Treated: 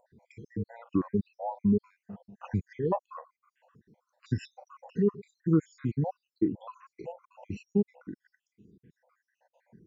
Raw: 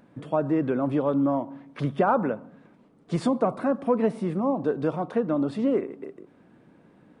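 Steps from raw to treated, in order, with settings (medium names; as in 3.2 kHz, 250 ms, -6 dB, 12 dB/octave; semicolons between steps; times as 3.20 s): random holes in the spectrogram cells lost 79%; tape speed -27%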